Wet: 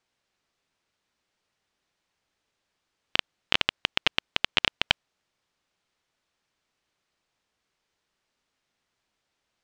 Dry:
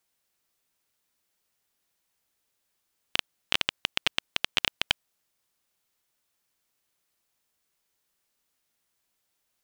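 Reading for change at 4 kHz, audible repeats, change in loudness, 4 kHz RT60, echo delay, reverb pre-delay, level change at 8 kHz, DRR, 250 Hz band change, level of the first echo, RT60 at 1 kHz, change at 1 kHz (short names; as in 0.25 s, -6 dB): +2.0 dB, none, +2.5 dB, none, none, none, -4.0 dB, none, +4.5 dB, none, none, +4.0 dB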